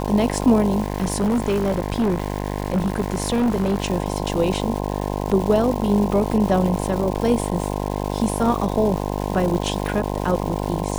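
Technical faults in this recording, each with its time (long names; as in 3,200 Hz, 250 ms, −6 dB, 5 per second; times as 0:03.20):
mains buzz 50 Hz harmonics 21 −25 dBFS
surface crackle 520 per second −27 dBFS
0:00.82–0:03.88: clipping −16 dBFS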